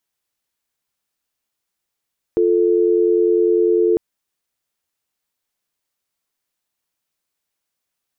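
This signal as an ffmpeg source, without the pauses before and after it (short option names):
-f lavfi -i "aevalsrc='0.178*(sin(2*PI*350*t)+sin(2*PI*440*t))':d=1.6:s=44100"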